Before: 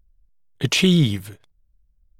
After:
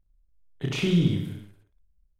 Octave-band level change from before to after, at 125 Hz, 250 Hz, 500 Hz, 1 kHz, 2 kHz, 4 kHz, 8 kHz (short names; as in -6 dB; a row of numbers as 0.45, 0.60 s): -5.0, -5.0, -5.5, -6.5, -10.0, -12.0, -15.0 dB